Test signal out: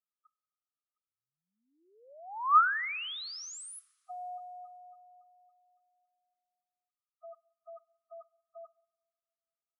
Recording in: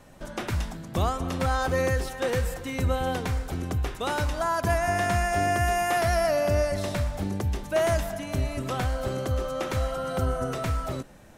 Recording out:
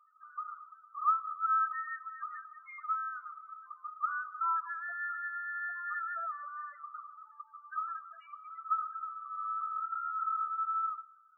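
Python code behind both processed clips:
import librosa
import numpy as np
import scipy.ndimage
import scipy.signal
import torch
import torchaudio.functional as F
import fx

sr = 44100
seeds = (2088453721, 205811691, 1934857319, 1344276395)

y = fx.ladder_highpass(x, sr, hz=1200.0, resonance_pct=85)
y = fx.spec_topn(y, sr, count=4)
y = fx.rev_double_slope(y, sr, seeds[0], early_s=0.6, late_s=2.3, knee_db=-17, drr_db=17.0)
y = y * librosa.db_to_amplitude(1.0)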